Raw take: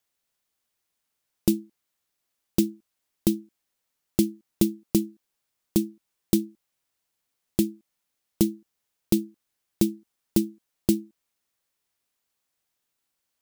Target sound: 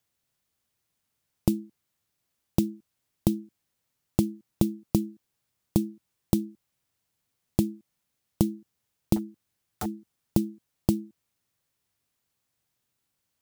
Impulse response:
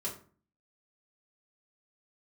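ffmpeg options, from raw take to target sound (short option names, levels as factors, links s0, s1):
-filter_complex "[0:a]equalizer=f=110:t=o:w=1.9:g=12,acompressor=threshold=0.112:ratio=8,asettb=1/sr,asplit=3[s0][s1][s2];[s0]atrim=end=9.164[s3];[s1]atrim=start=9.16:end=9.86,asetpts=PTS-STARTPTS,afade=t=in:d=0.004:c=qsin,afade=t=out:st=0.696:d=0.004:c=qsin,aeval=exprs='0.0596*(abs(mod(val(0)/0.0596+3,4)-2)-1)':c=same[s4];[s2]atrim=start=9.856[s5];[s3][s4]acrossfade=d=0.004:c1=hsin:c2=qsin[s6];[s6][s5]acrossfade=d=0.004:c1=qsin:c2=hsin"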